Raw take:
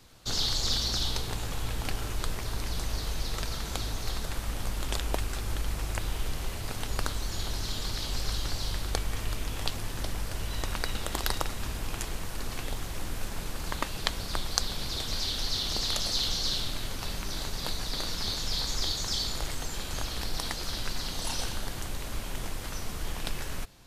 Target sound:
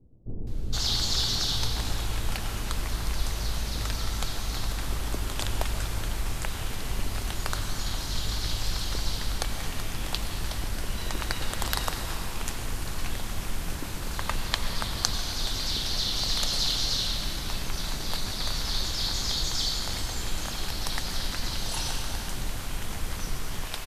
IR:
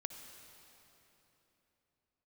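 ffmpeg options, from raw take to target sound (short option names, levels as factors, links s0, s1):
-filter_complex "[0:a]acrossover=split=450[s0][s1];[s1]adelay=470[s2];[s0][s2]amix=inputs=2:normalize=0[s3];[1:a]atrim=start_sample=2205,afade=t=out:st=0.39:d=0.01,atrim=end_sample=17640,asetrate=28224,aresample=44100[s4];[s3][s4]afir=irnorm=-1:irlink=0,volume=1.33"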